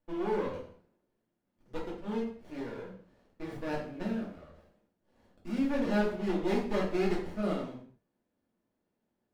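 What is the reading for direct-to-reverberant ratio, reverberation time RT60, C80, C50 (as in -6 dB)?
-4.5 dB, no single decay rate, 9.0 dB, 5.0 dB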